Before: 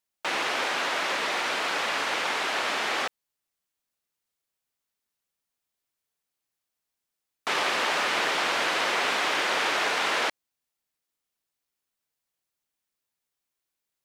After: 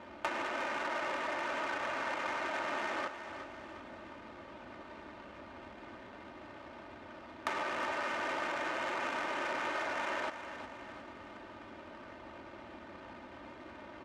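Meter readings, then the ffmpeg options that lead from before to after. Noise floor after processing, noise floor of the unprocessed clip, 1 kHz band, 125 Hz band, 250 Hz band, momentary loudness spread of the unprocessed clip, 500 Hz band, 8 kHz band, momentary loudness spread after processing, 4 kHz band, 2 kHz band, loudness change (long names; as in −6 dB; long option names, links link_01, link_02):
−51 dBFS, −85 dBFS, −7.5 dB, −2.5 dB, −3.5 dB, 4 LU, −6.0 dB, −17.5 dB, 15 LU, −17.0 dB, −10.0 dB, −11.0 dB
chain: -filter_complex "[0:a]aeval=exprs='val(0)+0.5*0.0168*sgn(val(0))':channel_layout=same,lowpass=3800,asplit=2[link_01][link_02];[link_02]alimiter=limit=-19dB:level=0:latency=1,volume=-0.5dB[link_03];[link_01][link_03]amix=inputs=2:normalize=0,asoftclip=type=hard:threshold=-16dB,acompressor=threshold=-33dB:ratio=8,aecho=1:1:3.3:0.68,adynamicsmooth=sensitivity=3:basefreq=830,highpass=76,asplit=2[link_04][link_05];[link_05]aecho=0:1:361|722|1083|1444|1805:0.316|0.155|0.0759|0.0372|0.0182[link_06];[link_04][link_06]amix=inputs=2:normalize=0,volume=-1.5dB"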